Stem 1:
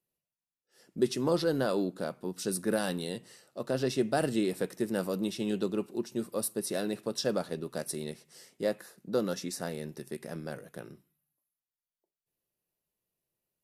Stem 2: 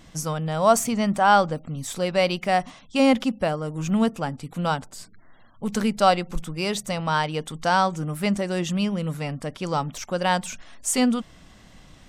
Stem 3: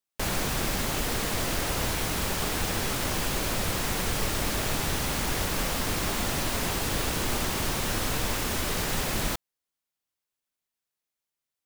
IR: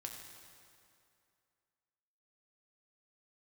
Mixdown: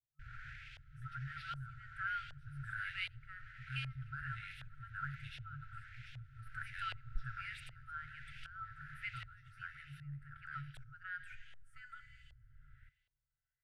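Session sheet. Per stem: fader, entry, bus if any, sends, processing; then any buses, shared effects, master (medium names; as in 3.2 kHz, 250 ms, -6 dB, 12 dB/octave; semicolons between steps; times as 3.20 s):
-3.5 dB, 0.00 s, bus A, send -8 dB, none
-9.0 dB, 0.80 s, bus A, send -15 dB, tone controls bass 0 dB, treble +5 dB
-13.0 dB, 0.00 s, no bus, send -10 dB, peak limiter -26 dBFS, peak gain reduction 11 dB; auto duck -10 dB, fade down 0.35 s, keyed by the first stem
bus A: 0.0 dB, FFT filter 100 Hz 0 dB, 460 Hz -8 dB, 880 Hz +3 dB, 5.8 kHz -26 dB, 9.4 kHz +5 dB; peak limiter -24.5 dBFS, peak gain reduction 9.5 dB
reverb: on, RT60 2.5 s, pre-delay 4 ms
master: FFT band-reject 150–1300 Hz; LFO low-pass saw up 1.3 Hz 640–3100 Hz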